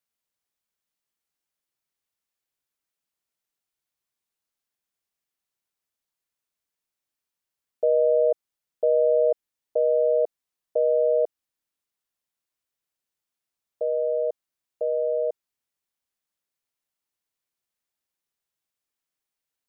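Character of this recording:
background noise floor −87 dBFS
spectral slope +9.5 dB per octave

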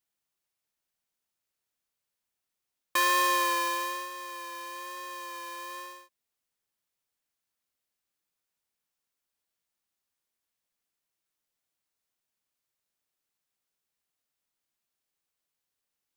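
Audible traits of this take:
background noise floor −86 dBFS
spectral slope −3.0 dB per octave

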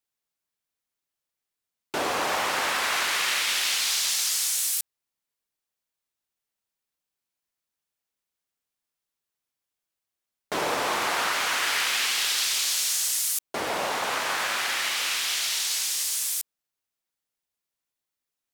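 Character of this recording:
background noise floor −87 dBFS
spectral slope 0.0 dB per octave

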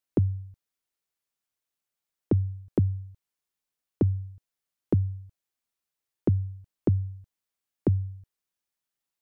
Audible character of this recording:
background noise floor −88 dBFS
spectral slope −12.0 dB per octave

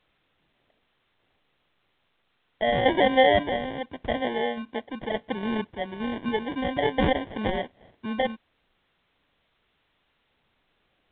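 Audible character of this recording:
aliases and images of a low sample rate 1,300 Hz, jitter 0%
sample-and-hold tremolo 3.5 Hz, depth 65%
a quantiser's noise floor 12 bits, dither triangular
A-law companding

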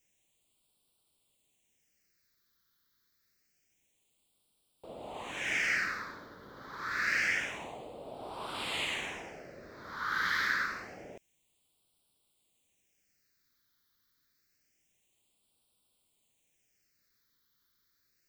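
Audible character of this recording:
a quantiser's noise floor 12 bits, dither triangular
phaser sweep stages 6, 0.27 Hz, lowest notch 690–1,800 Hz

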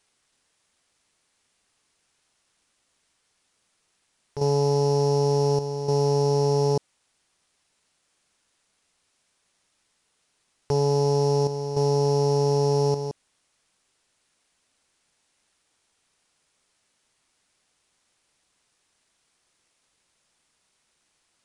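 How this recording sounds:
a buzz of ramps at a fixed pitch in blocks of 8 samples
chopped level 0.68 Hz, depth 60%, duty 80%
a quantiser's noise floor 12 bits, dither triangular
IMA ADPCM

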